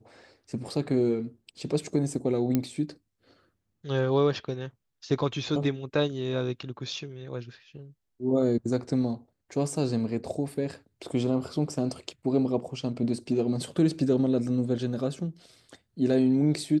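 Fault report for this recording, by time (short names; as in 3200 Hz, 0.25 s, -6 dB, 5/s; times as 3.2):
2.55 pop -12 dBFS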